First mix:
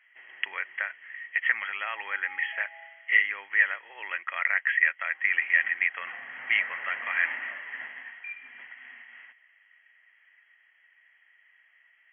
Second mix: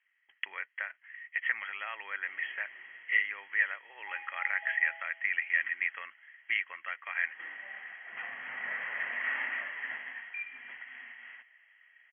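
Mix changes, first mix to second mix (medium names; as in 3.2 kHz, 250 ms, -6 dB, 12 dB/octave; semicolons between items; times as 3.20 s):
speech -6.0 dB; background: entry +2.10 s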